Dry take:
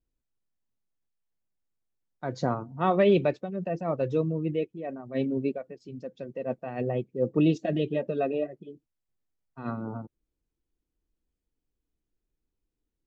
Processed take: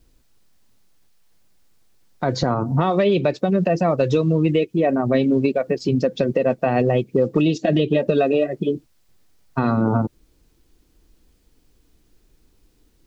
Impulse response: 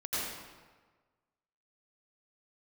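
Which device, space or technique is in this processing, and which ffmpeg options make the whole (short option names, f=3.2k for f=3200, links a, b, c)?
mastering chain: -filter_complex "[0:a]equalizer=f=4.6k:t=o:w=0.77:g=3.5,acrossover=split=1300|4000[a][b][c];[a]acompressor=threshold=-36dB:ratio=4[d];[b]acompressor=threshold=-54dB:ratio=4[e];[c]acompressor=threshold=-59dB:ratio=4[f];[d][e][f]amix=inputs=3:normalize=0,acompressor=threshold=-40dB:ratio=3,alimiter=level_in=31dB:limit=-1dB:release=50:level=0:latency=1,volume=-6.5dB"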